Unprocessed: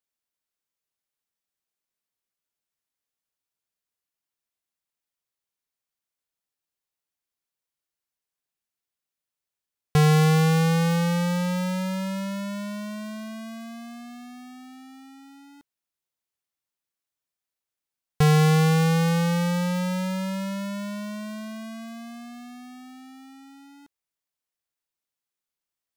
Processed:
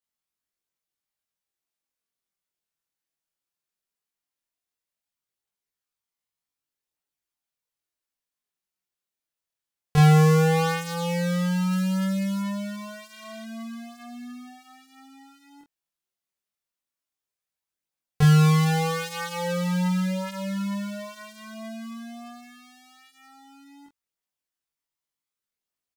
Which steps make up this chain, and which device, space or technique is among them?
11.71–12.42 s: peaking EQ 13 kHz +4.5 dB 1.4 oct; double-tracked vocal (doubling 21 ms -2 dB; chorus 0.16 Hz, delay 20 ms, depth 7.1 ms); 13.18–13.42 s: spectral replace 1.5–10 kHz before

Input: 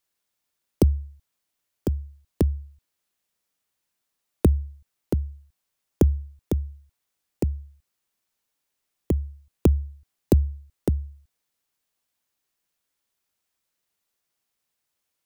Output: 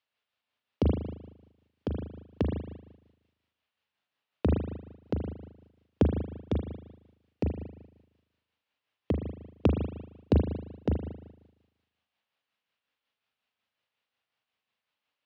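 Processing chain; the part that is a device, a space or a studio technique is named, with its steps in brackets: combo amplifier with spring reverb and tremolo (spring tank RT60 1 s, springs 38 ms, chirp 25 ms, DRR 1.5 dB; tremolo 5.5 Hz, depth 41%; cabinet simulation 100–4200 Hz, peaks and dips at 160 Hz -8 dB, 350 Hz -9 dB, 2.8 kHz +4 dB)

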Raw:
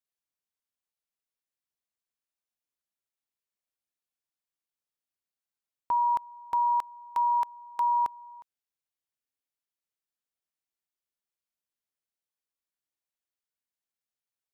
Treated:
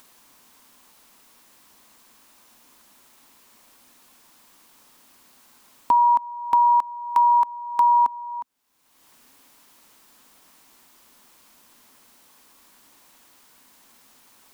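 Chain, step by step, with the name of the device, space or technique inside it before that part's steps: upward and downward compression (upward compressor, threshold -35 dBFS; compression, threshold -27 dBFS, peak gain reduction 4 dB); fifteen-band graphic EQ 100 Hz -6 dB, 250 Hz +10 dB, 1 kHz +8 dB; trim +4.5 dB

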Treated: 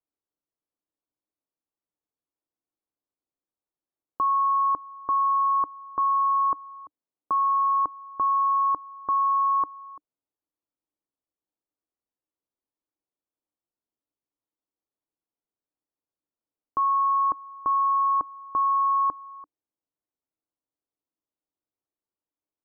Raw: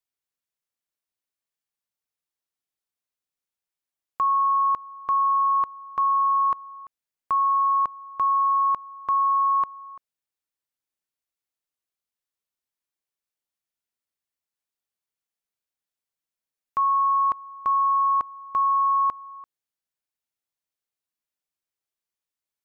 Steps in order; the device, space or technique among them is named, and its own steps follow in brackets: 6.57–7.80 s: high-pass 92 Hz 24 dB/octave; under water (low-pass 1.2 kHz 24 dB/octave; peaking EQ 300 Hz +10.5 dB 0.38 oct); peaking EQ 460 Hz +3 dB

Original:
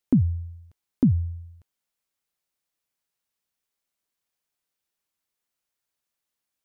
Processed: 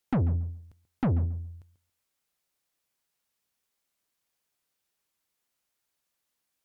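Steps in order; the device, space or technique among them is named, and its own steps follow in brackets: rockabilly slapback (valve stage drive 27 dB, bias 0.4; tape echo 138 ms, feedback 22%, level -12 dB, low-pass 1.1 kHz); trim +4.5 dB

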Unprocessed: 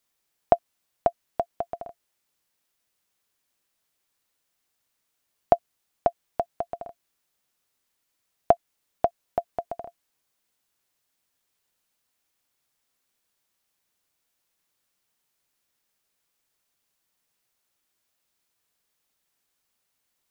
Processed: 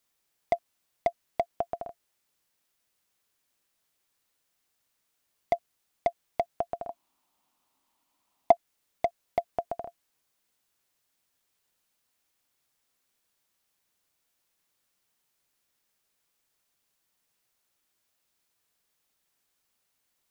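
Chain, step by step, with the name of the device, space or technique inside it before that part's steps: limiter into clipper (peak limiter -10.5 dBFS, peak gain reduction 7 dB; hard clipper -16.5 dBFS, distortion -14 dB); 6.89–8.52 s: FFT filter 150 Hz 0 dB, 270 Hz +10 dB, 460 Hz -1 dB, 950 Hz +14 dB, 1.6 kHz -2 dB, 2.9 kHz +2 dB, 5.2 kHz -1 dB

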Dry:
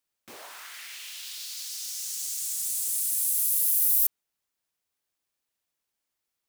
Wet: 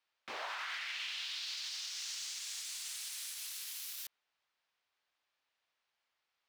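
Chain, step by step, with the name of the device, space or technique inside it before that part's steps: DJ mixer with the lows and highs turned down (three-band isolator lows -14 dB, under 580 Hz, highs -24 dB, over 4.9 kHz; peak limiter -37.5 dBFS, peak gain reduction 5.5 dB); treble shelf 8.2 kHz -5.5 dB; trim +6.5 dB

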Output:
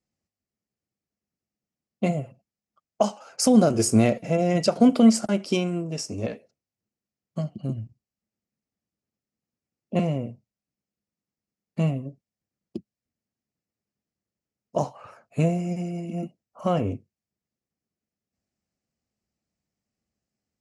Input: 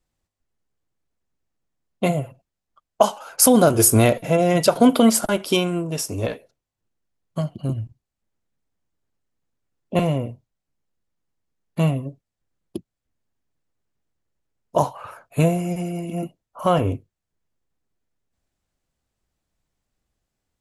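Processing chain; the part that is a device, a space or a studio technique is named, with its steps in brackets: car door speaker (cabinet simulation 82–7900 Hz, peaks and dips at 210 Hz +8 dB, 980 Hz -7 dB, 1.5 kHz -5 dB, 3.5 kHz -9 dB, 5.2 kHz +4 dB); trim -5 dB

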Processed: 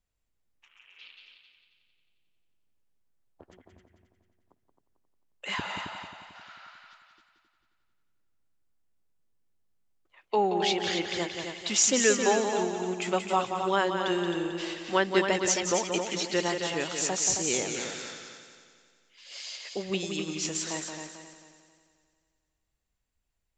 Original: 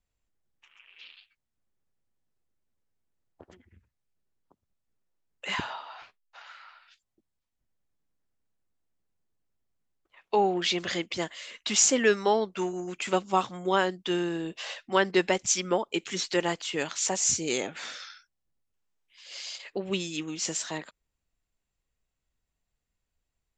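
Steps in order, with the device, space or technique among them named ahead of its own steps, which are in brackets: multi-head tape echo (multi-head delay 89 ms, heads second and third, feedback 46%, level -7 dB; wow and flutter 21 cents); trim -1.5 dB

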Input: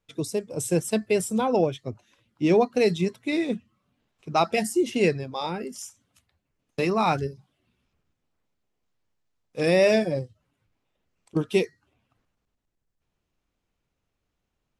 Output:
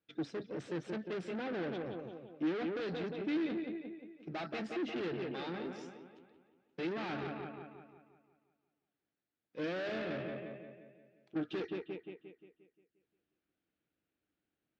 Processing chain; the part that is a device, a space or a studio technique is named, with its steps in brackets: analogue delay pedal into a guitar amplifier (bucket-brigade echo 176 ms, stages 4096, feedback 50%, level -9 dB; valve stage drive 32 dB, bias 0.55; cabinet simulation 110–4300 Hz, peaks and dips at 110 Hz -5 dB, 310 Hz +9 dB, 1 kHz -8 dB, 1.6 kHz +5 dB); trim -5.5 dB

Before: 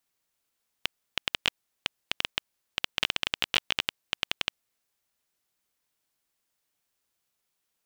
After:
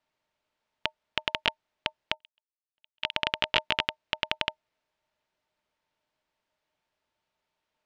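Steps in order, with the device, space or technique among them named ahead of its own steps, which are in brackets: 2.14–3.13 s: gate -29 dBFS, range -55 dB; inside a cardboard box (low-pass 3.4 kHz 12 dB/octave; small resonant body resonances 620/900 Hz, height 13 dB, ringing for 95 ms); trim +3 dB

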